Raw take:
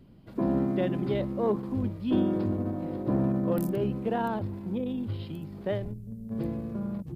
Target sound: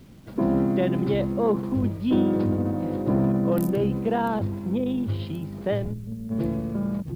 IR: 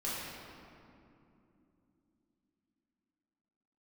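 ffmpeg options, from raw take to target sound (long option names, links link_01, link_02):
-filter_complex "[0:a]asplit=2[link_01][link_02];[link_02]alimiter=limit=-23.5dB:level=0:latency=1,volume=-3dB[link_03];[link_01][link_03]amix=inputs=2:normalize=0,acrusher=bits=9:mix=0:aa=0.000001,volume=1.5dB"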